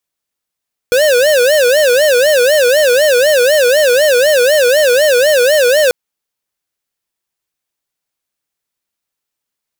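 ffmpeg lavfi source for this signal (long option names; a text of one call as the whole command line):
ffmpeg -f lavfi -i "aevalsrc='0.335*(2*lt(mod((550.5*t-69.5/(2*PI*4)*sin(2*PI*4*t)),1),0.5)-1)':duration=4.99:sample_rate=44100" out.wav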